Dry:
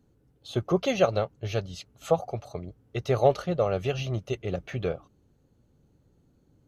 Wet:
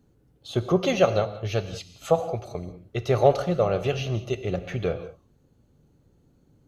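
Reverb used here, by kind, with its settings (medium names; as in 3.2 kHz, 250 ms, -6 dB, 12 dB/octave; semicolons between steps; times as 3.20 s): gated-style reverb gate 220 ms flat, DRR 10.5 dB; trim +2.5 dB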